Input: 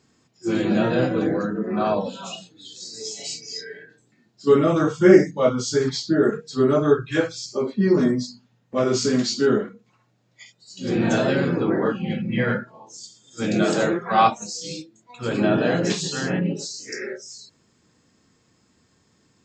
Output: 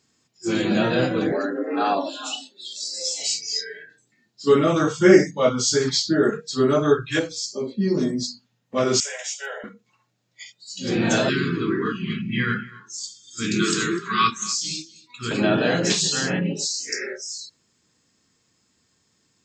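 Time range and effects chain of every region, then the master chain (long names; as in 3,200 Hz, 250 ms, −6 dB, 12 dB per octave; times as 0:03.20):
0:01.32–0:03.21: notch filter 6,500 Hz, Q 16 + frequency shifter +82 Hz
0:07.19–0:08.23: parametric band 1,400 Hz −12 dB 2 octaves + mains-hum notches 60/120/180/240/300/360/420/480/540 Hz + one half of a high-frequency compander decoder only
0:09.00–0:09.64: Butterworth high-pass 510 Hz 48 dB per octave + phaser with its sweep stopped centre 1,200 Hz, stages 6
0:11.29–0:15.31: elliptic band-stop filter 410–1,100 Hz, stop band 50 dB + single-tap delay 250 ms −19 dB
whole clip: noise reduction from a noise print of the clip's start 7 dB; high-shelf EQ 2,100 Hz +9.5 dB; level −1 dB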